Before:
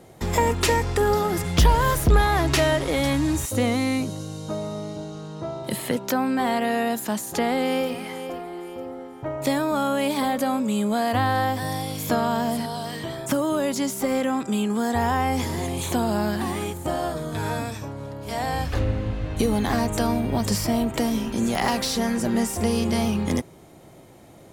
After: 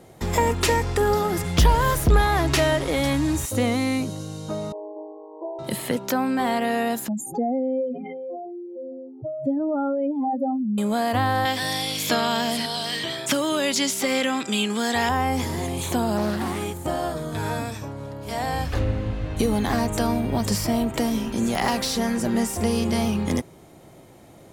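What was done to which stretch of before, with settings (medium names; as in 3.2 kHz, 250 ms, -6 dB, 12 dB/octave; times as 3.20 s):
4.72–5.59 s: brick-wall FIR band-pass 300–1100 Hz
7.08–10.78 s: spectral contrast enhancement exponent 3.4
11.45–15.09 s: frequency weighting D
16.17–16.59 s: loudspeaker Doppler distortion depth 0.28 ms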